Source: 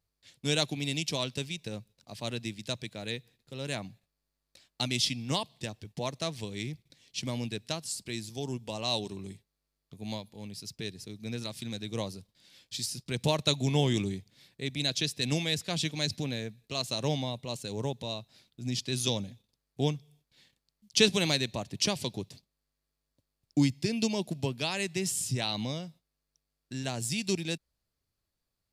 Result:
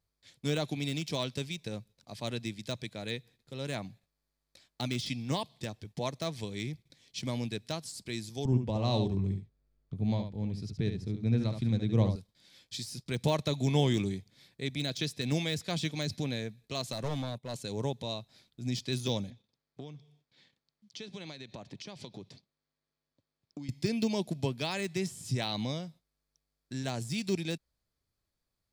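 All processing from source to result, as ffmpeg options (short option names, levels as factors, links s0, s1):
-filter_complex "[0:a]asettb=1/sr,asplit=3[s0][s1][s2];[s0]atrim=end=8.454[s3];[s1]atrim=start=8.45:end=12.16,asetpts=PTS-STARTPTS,afade=t=in:d=0.004:c=qsin,afade=t=out:st=3.706:d=0.004:c=qsin,aemphasis=mode=reproduction:type=riaa,aecho=1:1:71:0.422,atrim=end_sample=163611[s4];[s2]atrim=start=12.156[s5];[s3][s4]acrossfade=d=0.004:c1=hsin:c2=qsin[s6];[s6][s5]acrossfade=d=0.004:c1=qsin:c2=hsin,asettb=1/sr,asplit=3[s7][s8][s9];[s7]atrim=end=16.924[s10];[s8]atrim=start=16.92:end=17.54,asetpts=PTS-STARTPTS,afade=t=in:d=0.004:c=qsin,afade=t=out:st=0.616:d=0.004:c=qsin,agate=range=0.224:threshold=0.00794:ratio=16:release=100:detection=peak,equalizer=f=4100:t=o:w=0.88:g=-4.5,aeval=exprs='clip(val(0),-1,0.02)':c=same[s11];[s9]atrim=start=17.536[s12];[s10][s11]acrossfade=d=0.004:c1=hsin:c2=qsin[s13];[s13][s12]acrossfade=d=0.004:c1=qsin:c2=hsin,asettb=1/sr,asplit=3[s14][s15][s16];[s14]atrim=end=19.304[s17];[s15]atrim=start=19.3:end=23.69,asetpts=PTS-STARTPTS,afade=t=in:d=0.004:c=qsin,afade=t=out:st=4.386:d=0.004:c=qsin,acompressor=threshold=0.0126:ratio=16:attack=3.2:release=140:knee=1:detection=peak,highpass=110,lowpass=5300[s18];[s16]atrim=start=23.686[s19];[s17][s18]acrossfade=d=0.004:c1=hsin:c2=qsin[s20];[s20][s19]acrossfade=d=0.004:c1=qsin:c2=hsin,highshelf=f=6900:g=-4,bandreject=f=2800:w=12,deesser=0.85"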